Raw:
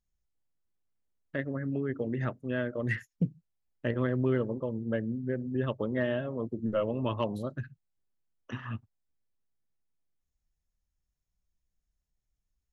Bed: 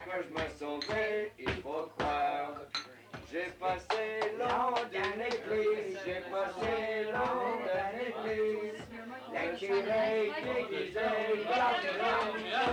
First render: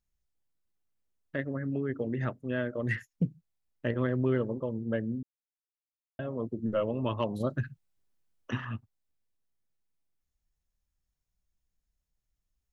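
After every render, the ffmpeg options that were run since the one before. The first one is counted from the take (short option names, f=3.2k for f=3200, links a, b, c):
-filter_complex "[0:a]asettb=1/sr,asplit=3[a][b][c];[a]atrim=end=7.404[d];[b]atrim=start=7.4:end=8.65,asetpts=PTS-STARTPTS,afade=t=in:d=0.004:c=qsin,afade=t=out:st=1.246:d=0.004:c=qsin,acontrast=28[e];[c]atrim=start=8.646[f];[d][e]acrossfade=d=0.004:c1=hsin:c2=qsin[g];[g][f]acrossfade=d=0.004:c1=qsin:c2=hsin,asplit=3[h][i][j];[h]atrim=end=5.23,asetpts=PTS-STARTPTS,afade=t=out:st=5.226:d=0.004:c=hsin[k];[i]atrim=start=5.23:end=6.19,asetpts=PTS-STARTPTS,volume=0[l];[j]atrim=start=6.19,asetpts=PTS-STARTPTS,afade=t=in:d=0.004:c=hsin[m];[k][l][m]concat=n=3:v=0:a=1"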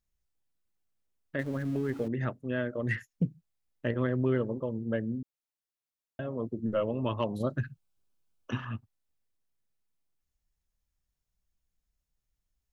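-filter_complex "[0:a]asettb=1/sr,asplit=3[a][b][c];[a]atrim=end=1.394[d];[b]atrim=start=1.39:end=2.08,asetpts=PTS-STARTPTS,afade=t=in:d=0.004:c=qsin,afade=t=out:st=0.686:d=0.004:c=qsin,aeval=exprs='val(0)+0.5*0.00668*sgn(val(0))':c=same[e];[c]atrim=start=2.076[f];[d][e]acrossfade=d=0.004:c1=hsin:c2=qsin[g];[g][f]acrossfade=d=0.004:c1=qsin:c2=hsin,asettb=1/sr,asplit=3[h][i][j];[h]atrim=end=7.674[k];[i]atrim=start=7.67:end=8.7,asetpts=PTS-STARTPTS,afade=t=in:d=0.004:c=qsin,afade=t=out:st=1.026:d=0.004:c=qsin,bandreject=f=1.9k:w=5.3[l];[j]atrim=start=8.696[m];[k][l]acrossfade=d=0.004:c1=hsin:c2=qsin[n];[n][m]acrossfade=d=0.004:c1=qsin:c2=hsin"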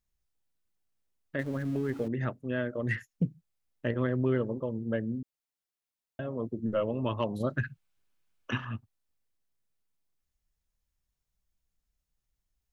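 -filter_complex "[0:a]asettb=1/sr,asplit=3[a][b][c];[a]atrim=end=7.484[d];[b]atrim=start=7.48:end=8.58,asetpts=PTS-STARTPTS,afade=t=in:d=0.004:c=qsin,afade=t=out:st=1.096:d=0.004:c=qsin,equalizer=f=2k:w=0.85:g=8.5[e];[c]atrim=start=8.576[f];[d][e]acrossfade=d=0.004:c1=hsin:c2=qsin[g];[g][f]acrossfade=d=0.004:c1=qsin:c2=hsin"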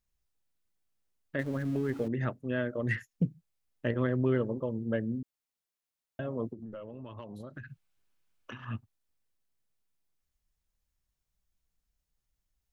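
-filter_complex "[0:a]asplit=3[a][b][c];[a]afade=t=out:st=6.52:d=0.02[d];[b]acompressor=threshold=-40dB:ratio=8:attack=3.2:release=140:knee=1:detection=peak,afade=t=in:st=6.52:d=0.02,afade=t=out:st=8.67:d=0.02[e];[c]afade=t=in:st=8.67:d=0.02[f];[d][e][f]amix=inputs=3:normalize=0"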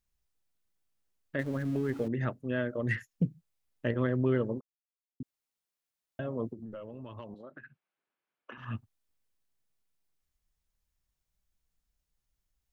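-filter_complex "[0:a]asettb=1/sr,asplit=3[a][b][c];[a]atrim=end=7.344[d];[b]atrim=start=7.34:end=8.58,asetpts=PTS-STARTPTS,afade=t=in:d=0.004:c=qsin,afade=t=out:st=1.236:d=0.004:c=qsin,highpass=320,lowpass=2.2k[e];[c]atrim=start=8.576[f];[d][e]acrossfade=d=0.004:c1=hsin:c2=qsin[g];[g][f]acrossfade=d=0.004:c1=qsin:c2=hsin,asplit=3[h][i][j];[h]atrim=end=4.61,asetpts=PTS-STARTPTS,afade=t=out:st=4.606:d=0.004:c=hsin[k];[i]atrim=start=4.61:end=5.2,asetpts=PTS-STARTPTS,volume=0[l];[j]atrim=start=5.2,asetpts=PTS-STARTPTS,afade=t=in:d=0.004:c=hsin[m];[k][l][m]concat=n=3:v=0:a=1"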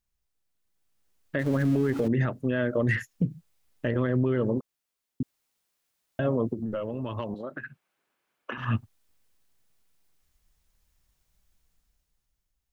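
-af "dynaudnorm=f=180:g=11:m=11.5dB,alimiter=limit=-16.5dB:level=0:latency=1:release=79"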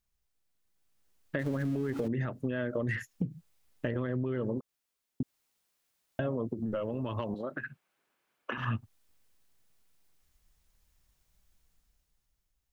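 -af "acompressor=threshold=-29dB:ratio=5"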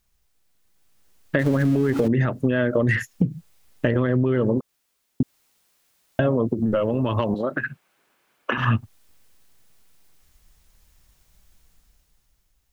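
-af "volume=12dB"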